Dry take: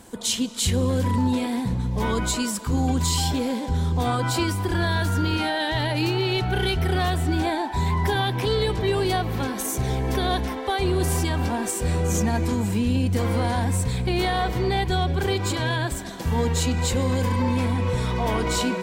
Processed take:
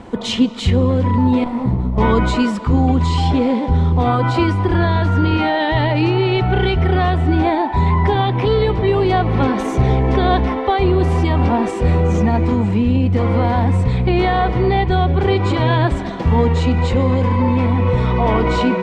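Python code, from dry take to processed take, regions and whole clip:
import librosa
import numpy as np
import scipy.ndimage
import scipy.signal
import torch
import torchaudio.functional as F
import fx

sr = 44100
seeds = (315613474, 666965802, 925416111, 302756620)

y = fx.chain(x, sr, fx.lower_of_two(delay_ms=0.94),
    fx.peak_eq(hz=3000.0, db=-7.5, octaves=2.2),
    fx.detune_double(cents=31), at=(1.44, 1.98))
y = scipy.signal.sosfilt(scipy.signal.butter(2, 2300.0, 'lowpass', fs=sr, output='sos'), y)
y = fx.notch(y, sr, hz=1600.0, q=8.0)
y = fx.rider(y, sr, range_db=4, speed_s=0.5)
y = y * librosa.db_to_amplitude(8.5)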